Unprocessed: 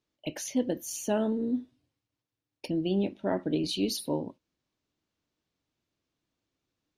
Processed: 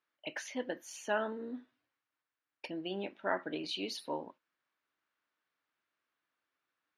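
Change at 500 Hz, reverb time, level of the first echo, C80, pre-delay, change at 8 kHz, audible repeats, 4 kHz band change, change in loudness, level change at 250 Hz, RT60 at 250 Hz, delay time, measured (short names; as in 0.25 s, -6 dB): -6.5 dB, none, none, none, none, -11.5 dB, none, -4.5 dB, -8.0 dB, -13.0 dB, none, none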